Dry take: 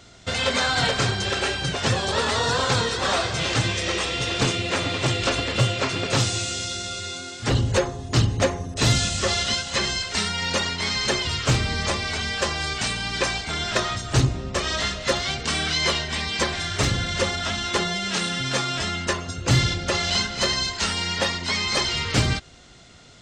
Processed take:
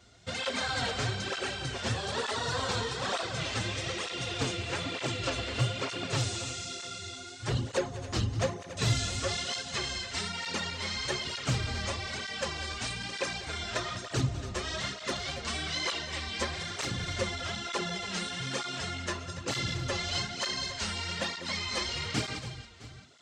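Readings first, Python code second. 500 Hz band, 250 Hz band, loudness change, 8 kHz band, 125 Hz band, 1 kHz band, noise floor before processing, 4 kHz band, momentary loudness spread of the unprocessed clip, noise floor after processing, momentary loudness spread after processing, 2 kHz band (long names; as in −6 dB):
−9.5 dB, −9.5 dB, −9.5 dB, −9.5 dB, −9.5 dB, −9.5 dB, −37 dBFS, −9.5 dB, 4 LU, −44 dBFS, 4 LU, −9.5 dB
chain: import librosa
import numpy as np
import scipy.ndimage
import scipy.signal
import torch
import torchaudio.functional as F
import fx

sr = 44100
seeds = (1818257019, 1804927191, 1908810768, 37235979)

y = fx.echo_multitap(x, sr, ms=(196, 280, 666), db=(-15.0, -13.5, -18.5))
y = fx.flanger_cancel(y, sr, hz=1.1, depth_ms=7.6)
y = y * 10.0 ** (-7.0 / 20.0)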